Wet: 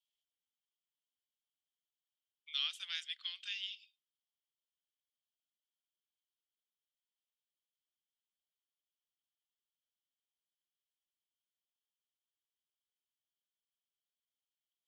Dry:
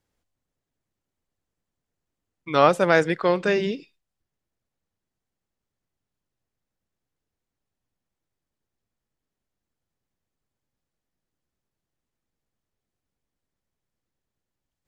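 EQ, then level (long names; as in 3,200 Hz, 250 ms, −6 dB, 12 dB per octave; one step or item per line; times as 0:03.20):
four-pole ladder high-pass 3,000 Hz, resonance 80%
−2.5 dB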